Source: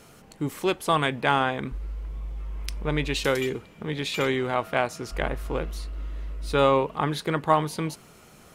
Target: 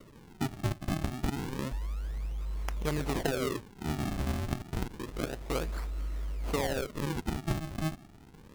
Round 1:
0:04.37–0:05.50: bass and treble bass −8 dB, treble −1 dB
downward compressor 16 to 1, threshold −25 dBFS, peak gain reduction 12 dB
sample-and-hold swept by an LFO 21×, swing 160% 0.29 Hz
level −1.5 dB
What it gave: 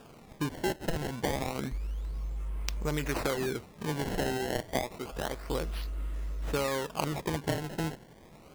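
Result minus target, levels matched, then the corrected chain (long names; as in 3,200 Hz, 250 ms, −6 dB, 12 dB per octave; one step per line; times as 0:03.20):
sample-and-hold swept by an LFO: distortion −5 dB
0:04.37–0:05.50: bass and treble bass −8 dB, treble −1 dB
downward compressor 16 to 1, threshold −25 dBFS, peak gain reduction 12 dB
sample-and-hold swept by an LFO 52×, swing 160% 0.29 Hz
level −1.5 dB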